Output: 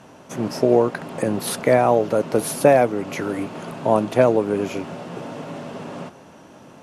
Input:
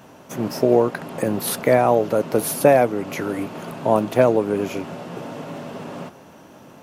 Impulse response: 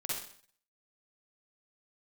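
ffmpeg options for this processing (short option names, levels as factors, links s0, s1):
-af "lowpass=f=11000:w=0.5412,lowpass=f=11000:w=1.3066"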